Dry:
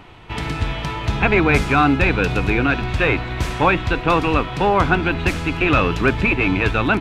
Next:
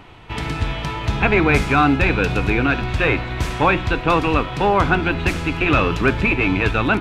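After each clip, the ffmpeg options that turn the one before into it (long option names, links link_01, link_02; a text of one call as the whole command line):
ffmpeg -i in.wav -af "bandreject=frequency=179.6:width_type=h:width=4,bandreject=frequency=359.2:width_type=h:width=4,bandreject=frequency=538.8:width_type=h:width=4,bandreject=frequency=718.4:width_type=h:width=4,bandreject=frequency=898:width_type=h:width=4,bandreject=frequency=1077.6:width_type=h:width=4,bandreject=frequency=1257.2:width_type=h:width=4,bandreject=frequency=1436.8:width_type=h:width=4,bandreject=frequency=1616.4:width_type=h:width=4,bandreject=frequency=1796:width_type=h:width=4,bandreject=frequency=1975.6:width_type=h:width=4,bandreject=frequency=2155.2:width_type=h:width=4,bandreject=frequency=2334.8:width_type=h:width=4,bandreject=frequency=2514.4:width_type=h:width=4,bandreject=frequency=2694:width_type=h:width=4,bandreject=frequency=2873.6:width_type=h:width=4,bandreject=frequency=3053.2:width_type=h:width=4,bandreject=frequency=3232.8:width_type=h:width=4,bandreject=frequency=3412.4:width_type=h:width=4,bandreject=frequency=3592:width_type=h:width=4,bandreject=frequency=3771.6:width_type=h:width=4,bandreject=frequency=3951.2:width_type=h:width=4,bandreject=frequency=4130.8:width_type=h:width=4,bandreject=frequency=4310.4:width_type=h:width=4,bandreject=frequency=4490:width_type=h:width=4,bandreject=frequency=4669.6:width_type=h:width=4,bandreject=frequency=4849.2:width_type=h:width=4,bandreject=frequency=5028.8:width_type=h:width=4,bandreject=frequency=5208.4:width_type=h:width=4,bandreject=frequency=5388:width_type=h:width=4,bandreject=frequency=5567.6:width_type=h:width=4" out.wav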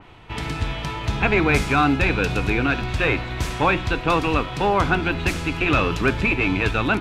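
ffmpeg -i in.wav -af "adynamicequalizer=threshold=0.0224:dfrequency=3600:dqfactor=0.7:tfrequency=3600:tqfactor=0.7:attack=5:release=100:ratio=0.375:range=2.5:mode=boostabove:tftype=highshelf,volume=-3dB" out.wav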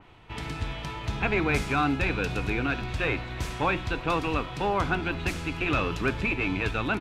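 ffmpeg -i in.wav -af "aecho=1:1:340:0.0631,volume=-7dB" out.wav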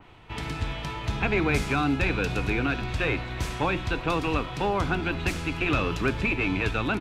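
ffmpeg -i in.wav -filter_complex "[0:a]acrossover=split=490|3000[link_01][link_02][link_03];[link_02]acompressor=threshold=-28dB:ratio=6[link_04];[link_01][link_04][link_03]amix=inputs=3:normalize=0,volume=2dB" out.wav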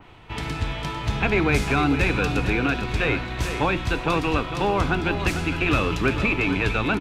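ffmpeg -i in.wav -af "aecho=1:1:449:0.335,volume=3.5dB" out.wav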